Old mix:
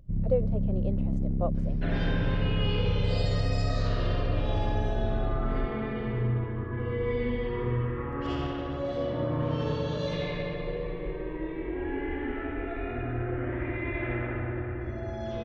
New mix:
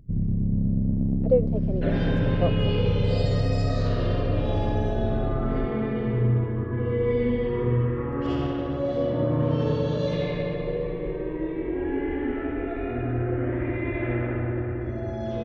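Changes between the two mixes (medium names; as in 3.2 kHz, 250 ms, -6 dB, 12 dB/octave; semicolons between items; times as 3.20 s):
speech: entry +1.00 s; master: add graphic EQ 125/250/500 Hz +5/+5/+5 dB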